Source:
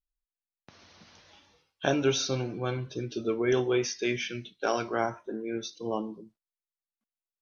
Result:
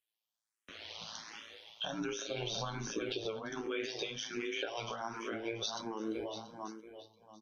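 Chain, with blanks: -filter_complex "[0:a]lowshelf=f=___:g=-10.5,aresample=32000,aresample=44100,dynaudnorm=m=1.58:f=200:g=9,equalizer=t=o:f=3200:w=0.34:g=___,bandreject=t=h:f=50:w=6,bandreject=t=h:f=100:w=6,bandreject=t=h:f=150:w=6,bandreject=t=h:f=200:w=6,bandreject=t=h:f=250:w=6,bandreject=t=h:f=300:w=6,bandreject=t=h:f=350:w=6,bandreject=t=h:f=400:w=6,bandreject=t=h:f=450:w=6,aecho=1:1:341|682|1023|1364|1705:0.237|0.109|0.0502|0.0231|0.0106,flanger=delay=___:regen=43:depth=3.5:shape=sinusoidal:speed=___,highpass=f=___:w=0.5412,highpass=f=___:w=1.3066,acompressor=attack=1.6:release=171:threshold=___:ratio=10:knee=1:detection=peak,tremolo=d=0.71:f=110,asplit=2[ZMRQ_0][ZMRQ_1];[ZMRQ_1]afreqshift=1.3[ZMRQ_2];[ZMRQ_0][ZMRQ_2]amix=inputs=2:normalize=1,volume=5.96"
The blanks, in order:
300, 6, 8.9, 0.39, 92, 92, 0.00708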